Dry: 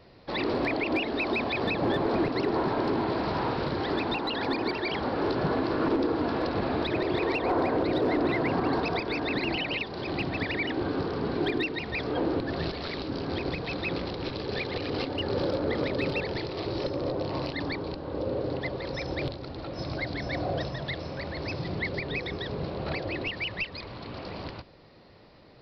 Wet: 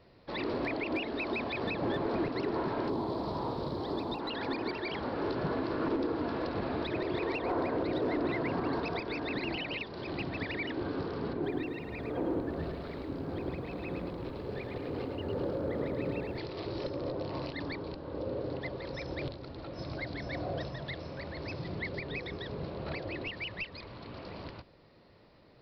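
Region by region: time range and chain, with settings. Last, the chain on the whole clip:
2.88–4.19 s: high-order bell 2 kHz -11 dB 1.3 oct + added noise pink -64 dBFS
11.33–16.38 s: low-pass 1.1 kHz 6 dB/octave + bit-crushed delay 107 ms, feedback 35%, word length 10-bit, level -5.5 dB
whole clip: treble shelf 4.8 kHz -4.5 dB; band-stop 770 Hz, Q 20; trim -5.5 dB

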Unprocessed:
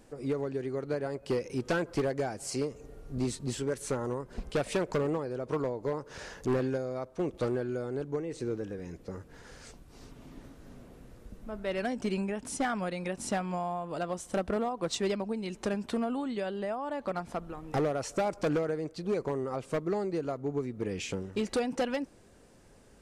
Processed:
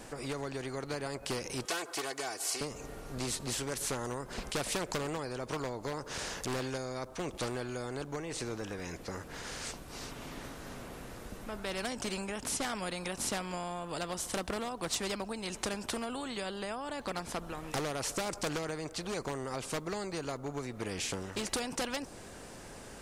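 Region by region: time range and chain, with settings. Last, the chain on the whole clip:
1.65–2.61 s: high-pass 670 Hz + comb 2.7 ms, depth 81%
whole clip: dynamic bell 2.1 kHz, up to -6 dB, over -49 dBFS, Q 0.81; spectrum-flattening compressor 2:1; trim +4 dB

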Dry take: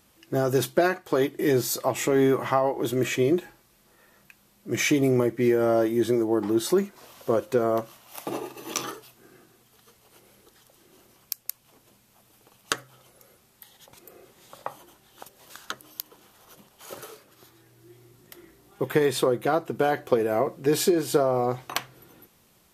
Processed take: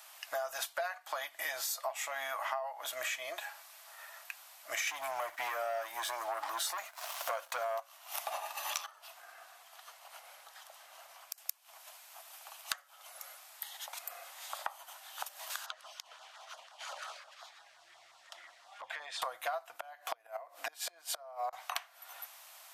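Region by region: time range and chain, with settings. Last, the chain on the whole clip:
4.87–7.80 s: bass shelf 120 Hz +7 dB + waveshaping leveller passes 2
8.86–11.38 s: tilt EQ -2 dB/octave + compression 3:1, threshold -49 dBFS
15.66–19.22 s: compression 3:1, threshold -42 dBFS + LFO notch saw down 5.7 Hz 590–2800 Hz + distance through air 110 m
19.74–21.53 s: resonant low shelf 200 Hz -10.5 dB, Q 3 + band-stop 410 Hz + inverted gate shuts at -14 dBFS, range -29 dB
whole clip: elliptic high-pass 650 Hz, stop band 40 dB; compression 6:1, threshold -45 dBFS; trim +9 dB

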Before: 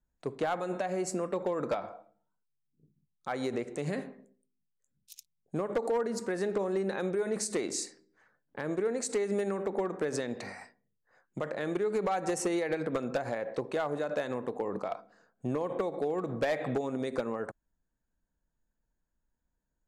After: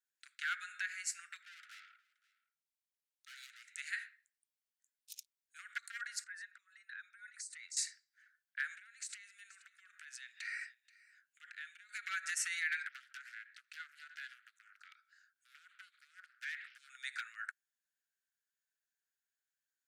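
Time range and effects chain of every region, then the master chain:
1.42–3.69 s: high-pass 410 Hz + valve stage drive 44 dB, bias 0.45 + delay 525 ms -23 dB
6.24–7.77 s: resonances exaggerated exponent 1.5 + high-pass 780 Hz 24 dB/octave + compression 4:1, threshold -45 dBFS
8.75–11.89 s: peaking EQ 2.8 kHz +5 dB 0.5 oct + compression 12:1, threshold -39 dBFS + delay 480 ms -18.5 dB
12.88–16.90 s: compression 1.5:1, threshold -53 dBFS + loudspeaker Doppler distortion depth 0.63 ms
whole clip: steep high-pass 1.4 kHz 96 dB/octave; dynamic bell 1.8 kHz, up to +6 dB, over -54 dBFS, Q 1.2

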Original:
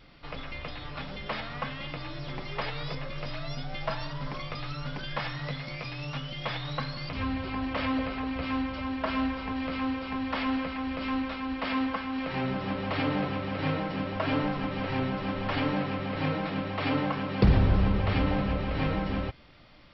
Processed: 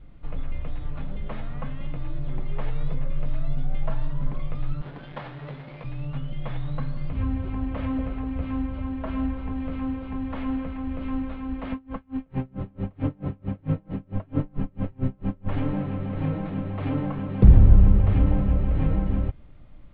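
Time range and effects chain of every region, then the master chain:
4.81–5.84 s: square wave that keeps the level + high-pass 590 Hz 6 dB/octave
11.72–15.49 s: bass shelf 470 Hz +5.5 dB + logarithmic tremolo 4.5 Hz, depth 34 dB
whole clip: steep low-pass 3.9 kHz 36 dB/octave; tilt EQ -4 dB/octave; trim -6 dB

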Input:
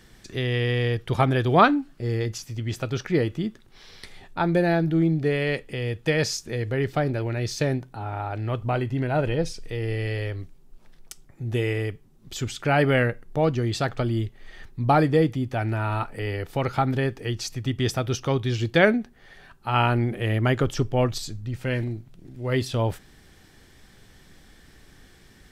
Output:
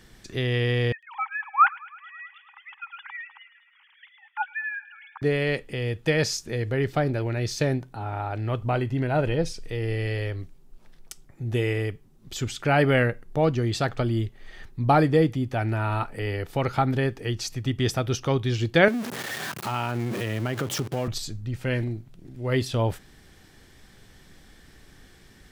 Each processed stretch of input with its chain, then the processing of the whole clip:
0.92–5.22 s: formants replaced by sine waves + brick-wall FIR high-pass 780 Hz + feedback echo behind a high-pass 106 ms, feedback 73%, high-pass 2.8 kHz, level -10.5 dB
18.88–21.08 s: jump at every zero crossing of -26.5 dBFS + high-pass 110 Hz 24 dB/octave + compression 3:1, threshold -25 dBFS
whole clip: none

